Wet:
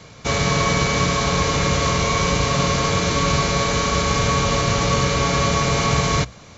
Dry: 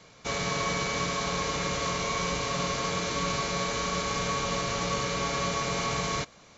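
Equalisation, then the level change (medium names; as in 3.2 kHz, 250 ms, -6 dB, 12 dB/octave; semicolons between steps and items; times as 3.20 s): peaking EQ 77 Hz +10.5 dB 2.3 oct; hum notches 60/120/180 Hz; +9.0 dB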